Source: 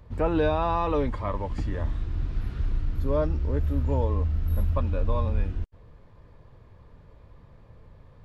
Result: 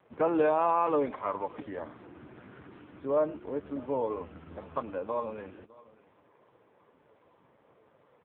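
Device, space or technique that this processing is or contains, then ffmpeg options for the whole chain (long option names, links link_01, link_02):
satellite phone: -filter_complex "[0:a]asplit=3[link_01][link_02][link_03];[link_01]afade=type=out:start_time=0.43:duration=0.02[link_04];[link_02]highshelf=frequency=3400:gain=5.5,afade=type=in:start_time=0.43:duration=0.02,afade=type=out:start_time=1.06:duration=0.02[link_05];[link_03]afade=type=in:start_time=1.06:duration=0.02[link_06];[link_04][link_05][link_06]amix=inputs=3:normalize=0,asettb=1/sr,asplit=3[link_07][link_08][link_09];[link_07]atrim=end=1.774[link_10];[link_08]atrim=start=1.77:end=2.72,asetpts=PTS-STARTPTS,afade=type=in:duration=0.004:curve=qsin,afade=type=out:start_time=0.946:duration=0.004:curve=qsin,aemphasis=mode=reproduction:type=75fm[link_11];[link_09]atrim=start=2.716[link_12];[link_10][link_11]acrossfade=duration=0.004:curve1=hsin:curve2=qsin[link_13];[link_13][link_12]acrossfade=duration=0.004:curve1=qsin:curve2=hsin,asettb=1/sr,asplit=3[link_14][link_15][link_16];[link_14]atrim=end=4.084[link_17];[link_15]atrim=start=4.08:end=4.8,asetpts=PTS-STARTPTS,afade=type=in:duration=0.004:curve=qsin,afade=type=out:start_time=0.716:duration=0.004:curve=qsin,asplit=2[link_18][link_19];[link_19]adelay=12,volume=-8dB[link_20];[link_18][link_20]amix=inputs=2:normalize=0,atrim=end_sample=31752[link_21];[link_16]atrim=start=4.796[link_22];[link_17][link_21]acrossfade=duration=0.004:curve1=hsin:curve2=qsin[link_23];[link_23][link_22]acrossfade=duration=0.004:curve1=qsin:curve2=hsin,highpass=320,lowpass=3300,aecho=1:1:103:0.0944,aecho=1:1:610:0.0794,volume=1dB" -ar 8000 -c:a libopencore_amrnb -b:a 5150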